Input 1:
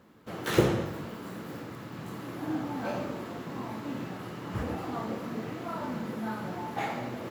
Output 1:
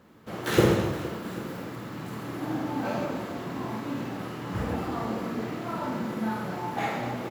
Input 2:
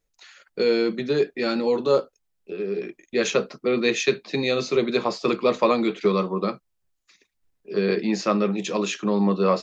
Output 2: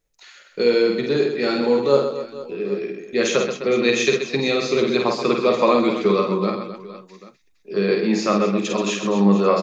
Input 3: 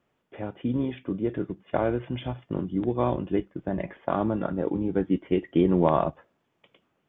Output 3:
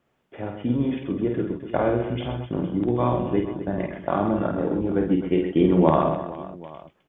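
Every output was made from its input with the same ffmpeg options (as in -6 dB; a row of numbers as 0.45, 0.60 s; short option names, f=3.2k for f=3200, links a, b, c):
-af "aecho=1:1:50|130|258|462.8|790.5:0.631|0.398|0.251|0.158|0.1,volume=1.5dB"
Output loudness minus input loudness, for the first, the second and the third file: +4.0, +3.5, +3.5 LU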